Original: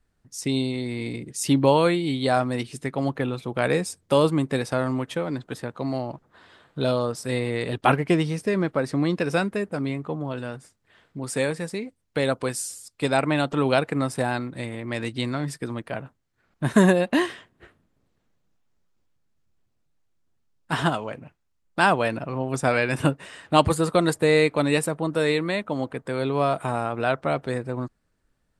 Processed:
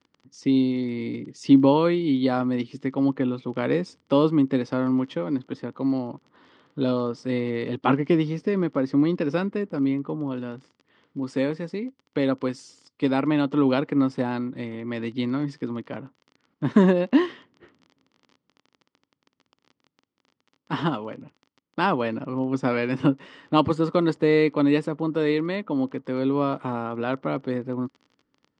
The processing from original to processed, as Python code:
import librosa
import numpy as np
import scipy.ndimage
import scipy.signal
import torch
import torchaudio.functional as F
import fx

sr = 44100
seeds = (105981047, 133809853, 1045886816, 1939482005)

y = fx.dmg_crackle(x, sr, seeds[0], per_s=23.0, level_db=-33.0)
y = fx.cabinet(y, sr, low_hz=140.0, low_slope=12, high_hz=4700.0, hz=(270.0, 690.0, 1600.0, 2500.0, 3900.0), db=(7, -9, -8, -6, -7))